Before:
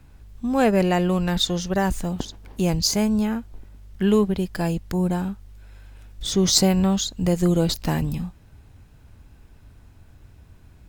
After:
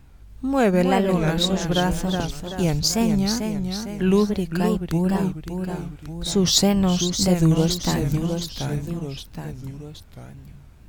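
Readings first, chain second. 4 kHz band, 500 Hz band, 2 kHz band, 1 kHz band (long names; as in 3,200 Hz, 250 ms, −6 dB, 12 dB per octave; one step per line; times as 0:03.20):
+1.5 dB, +1.0 dB, +1.5 dB, +1.0 dB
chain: delay with pitch and tempo change per echo 267 ms, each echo −1 semitone, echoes 3, each echo −6 dB
tape wow and flutter 150 cents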